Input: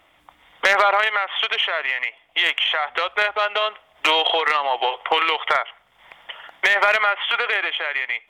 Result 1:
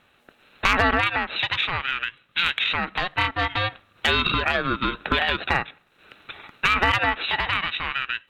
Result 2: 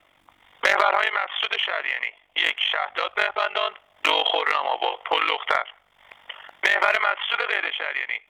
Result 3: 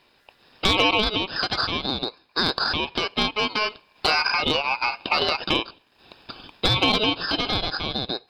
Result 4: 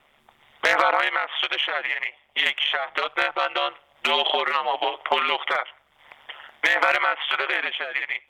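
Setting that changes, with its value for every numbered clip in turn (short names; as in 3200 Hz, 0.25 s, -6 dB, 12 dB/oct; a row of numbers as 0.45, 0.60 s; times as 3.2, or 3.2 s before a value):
ring modulator, frequency: 540, 24, 1700, 73 Hz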